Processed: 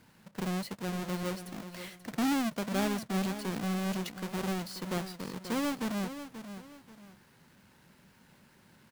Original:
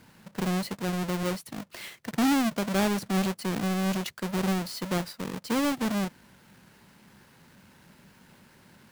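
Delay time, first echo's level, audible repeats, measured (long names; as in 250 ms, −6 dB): 534 ms, −11.0 dB, 2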